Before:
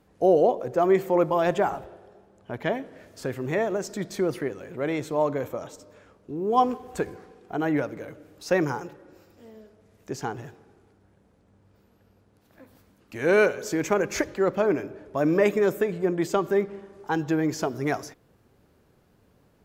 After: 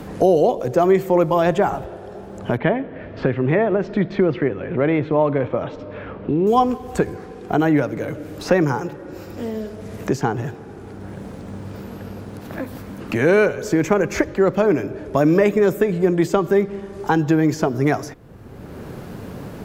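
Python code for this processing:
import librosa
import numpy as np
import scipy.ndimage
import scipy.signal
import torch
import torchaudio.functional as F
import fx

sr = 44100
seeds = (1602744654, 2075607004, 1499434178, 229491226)

y = fx.lowpass(x, sr, hz=3000.0, slope=24, at=(2.57, 6.47))
y = fx.low_shelf(y, sr, hz=190.0, db=8.5)
y = fx.band_squash(y, sr, depth_pct=70)
y = F.gain(torch.from_numpy(y), 5.5).numpy()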